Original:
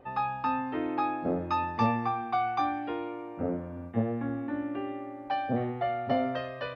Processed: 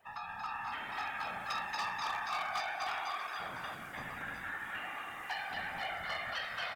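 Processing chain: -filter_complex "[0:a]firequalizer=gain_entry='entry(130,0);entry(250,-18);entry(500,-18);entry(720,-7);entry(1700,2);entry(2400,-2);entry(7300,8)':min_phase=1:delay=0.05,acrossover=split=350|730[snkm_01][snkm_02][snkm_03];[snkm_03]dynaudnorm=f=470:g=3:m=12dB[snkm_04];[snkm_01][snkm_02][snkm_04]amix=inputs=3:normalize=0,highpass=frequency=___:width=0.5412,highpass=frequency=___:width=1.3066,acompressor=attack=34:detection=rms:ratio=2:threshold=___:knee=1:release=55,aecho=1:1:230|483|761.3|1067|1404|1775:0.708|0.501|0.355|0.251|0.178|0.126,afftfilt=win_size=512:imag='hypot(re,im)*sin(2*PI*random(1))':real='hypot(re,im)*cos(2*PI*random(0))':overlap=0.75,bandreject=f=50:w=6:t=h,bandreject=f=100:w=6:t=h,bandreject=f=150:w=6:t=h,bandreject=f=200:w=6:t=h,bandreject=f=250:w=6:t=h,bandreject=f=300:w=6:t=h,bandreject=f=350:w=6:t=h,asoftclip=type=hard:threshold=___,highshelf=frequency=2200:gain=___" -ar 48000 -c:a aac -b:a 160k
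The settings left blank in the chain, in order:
150, 150, -44dB, -32.5dB, 9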